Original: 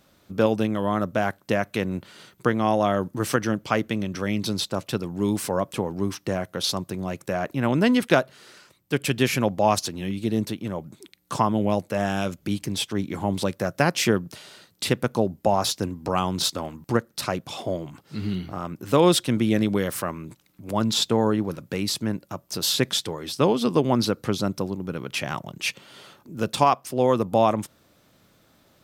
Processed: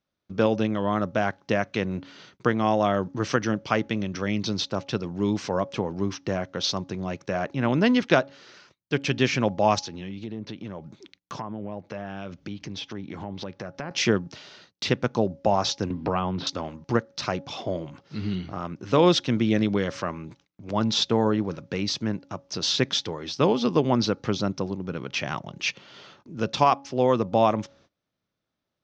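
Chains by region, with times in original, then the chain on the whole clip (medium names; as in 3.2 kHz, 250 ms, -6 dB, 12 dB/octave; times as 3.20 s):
9.81–13.91 s: low-pass that closes with the level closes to 1.9 kHz, closed at -18 dBFS + compression 3:1, threshold -32 dBFS
15.90–16.47 s: distance through air 360 m + three bands compressed up and down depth 70%
whole clip: elliptic low-pass 6.1 kHz, stop band 50 dB; de-hum 277.8 Hz, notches 3; gate -55 dBFS, range -23 dB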